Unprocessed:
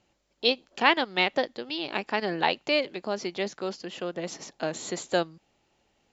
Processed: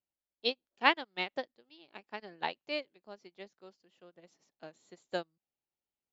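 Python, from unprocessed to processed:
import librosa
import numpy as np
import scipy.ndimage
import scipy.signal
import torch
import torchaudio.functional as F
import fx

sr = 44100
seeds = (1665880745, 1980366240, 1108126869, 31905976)

y = fx.upward_expand(x, sr, threshold_db=-35.0, expansion=2.5)
y = F.gain(torch.from_numpy(y), -3.0).numpy()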